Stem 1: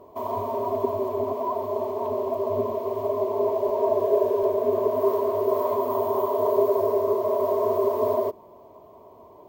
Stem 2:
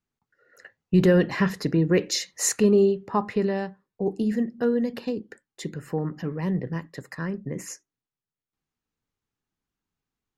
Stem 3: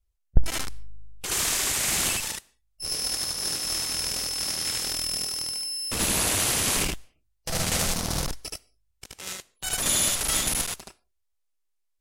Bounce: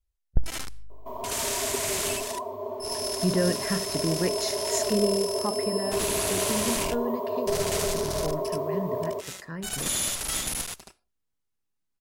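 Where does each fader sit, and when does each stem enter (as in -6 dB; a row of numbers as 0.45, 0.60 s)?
-7.0, -6.5, -4.5 dB; 0.90, 2.30, 0.00 s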